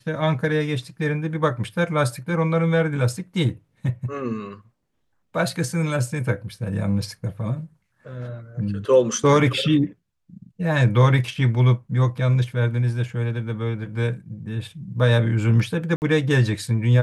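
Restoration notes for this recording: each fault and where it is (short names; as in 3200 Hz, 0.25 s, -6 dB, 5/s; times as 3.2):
15.96–16.02 gap 59 ms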